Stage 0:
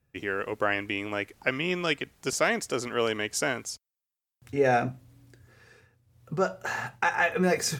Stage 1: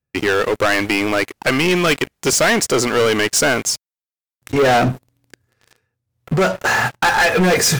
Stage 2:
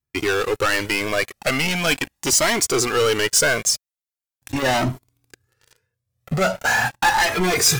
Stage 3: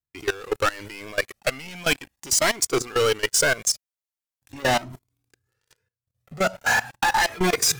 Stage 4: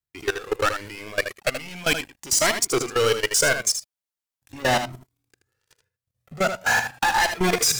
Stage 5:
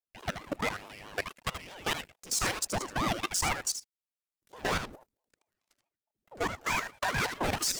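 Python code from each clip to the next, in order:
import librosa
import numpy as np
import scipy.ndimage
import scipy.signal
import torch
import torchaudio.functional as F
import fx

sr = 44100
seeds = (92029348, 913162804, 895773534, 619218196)

y1 = fx.low_shelf(x, sr, hz=63.0, db=-3.5)
y1 = fx.leveller(y1, sr, passes=5)
y2 = fx.high_shelf(y1, sr, hz=4100.0, db=6.0)
y2 = fx.comb_cascade(y2, sr, direction='rising', hz=0.41)
y3 = fx.level_steps(y2, sr, step_db=19)
y4 = y3 + 10.0 ** (-8.5 / 20.0) * np.pad(y3, (int(78 * sr / 1000.0), 0))[:len(y3)]
y5 = fx.ring_lfo(y4, sr, carrier_hz=440.0, swing_pct=80, hz=4.6)
y5 = y5 * librosa.db_to_amplitude(-7.0)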